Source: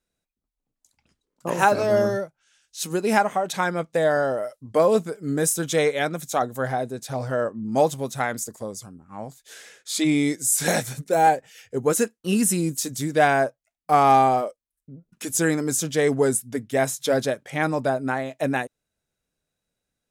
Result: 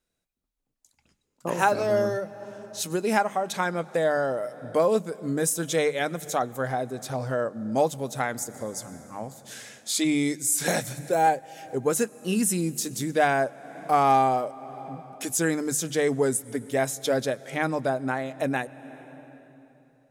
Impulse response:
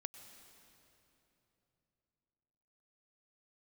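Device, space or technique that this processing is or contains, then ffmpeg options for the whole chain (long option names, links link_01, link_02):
ducked reverb: -filter_complex "[0:a]asplit=3[link_01][link_02][link_03];[1:a]atrim=start_sample=2205[link_04];[link_02][link_04]afir=irnorm=-1:irlink=0[link_05];[link_03]apad=whole_len=886531[link_06];[link_05][link_06]sidechaincompress=threshold=-31dB:ratio=10:attack=34:release=417,volume=2dB[link_07];[link_01][link_07]amix=inputs=2:normalize=0,bandreject=frequency=50:width_type=h:width=6,bandreject=frequency=100:width_type=h:width=6,bandreject=frequency=150:width_type=h:width=6,bandreject=frequency=200:width_type=h:width=6,asettb=1/sr,asplit=3[link_08][link_09][link_10];[link_08]atrim=end=8.664[link_11];[link_09]atrim=start=8.66:end=10.37,asetpts=PTS-STARTPTS,afade=type=in:duration=0.004:curve=qsin,afade=type=out:start_time=1.706:duration=0.004:curve=qsin,equalizer=frequency=9200:width_type=o:width=2:gain=3[link_12];[link_10]atrim=start=10.366[link_13];[link_11][link_12]acrossfade=duration=0.004:curve1=hsin:curve2=qsin[link_14];[link_14][link_13]acrossfade=duration=0.004:curve1=qsin:curve2=hsin,volume=-4.5dB"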